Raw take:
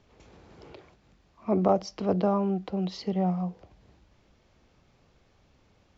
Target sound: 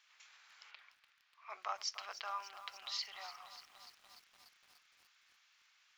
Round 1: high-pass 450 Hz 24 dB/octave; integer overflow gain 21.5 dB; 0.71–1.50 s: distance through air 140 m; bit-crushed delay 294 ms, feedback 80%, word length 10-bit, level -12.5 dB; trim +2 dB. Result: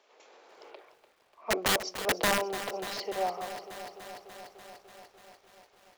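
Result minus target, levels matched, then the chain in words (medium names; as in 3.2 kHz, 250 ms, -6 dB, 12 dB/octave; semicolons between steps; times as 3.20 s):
500 Hz band +11.5 dB
high-pass 1.4 kHz 24 dB/octave; integer overflow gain 21.5 dB; 0.71–1.50 s: distance through air 140 m; bit-crushed delay 294 ms, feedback 80%, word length 10-bit, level -12.5 dB; trim +2 dB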